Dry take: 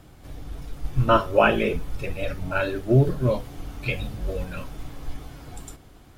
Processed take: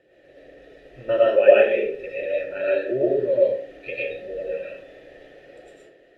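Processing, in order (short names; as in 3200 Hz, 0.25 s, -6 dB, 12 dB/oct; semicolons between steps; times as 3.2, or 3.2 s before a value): vowel filter e; small resonant body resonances 380/1100/1800/3900 Hz, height 9 dB; reverb RT60 0.50 s, pre-delay 70 ms, DRR -6 dB; gain +3.5 dB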